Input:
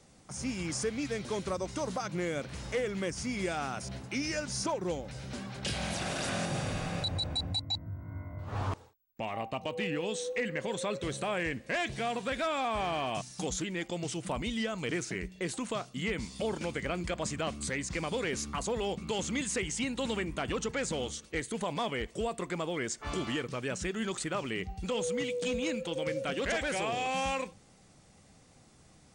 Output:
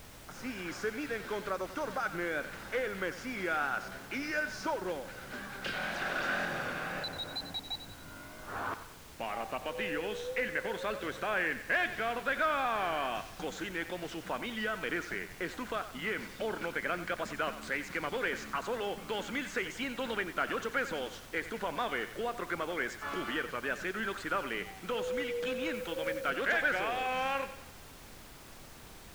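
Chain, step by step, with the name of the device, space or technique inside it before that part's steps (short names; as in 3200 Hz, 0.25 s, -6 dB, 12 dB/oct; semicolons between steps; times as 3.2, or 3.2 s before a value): horn gramophone (BPF 260–3600 Hz; bell 1500 Hz +12 dB 0.5 oct; wow and flutter; pink noise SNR 15 dB); 25.74–26.3 high shelf 8600 Hz +5.5 dB; thinning echo 92 ms, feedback 50%, level -12 dB; gain -2 dB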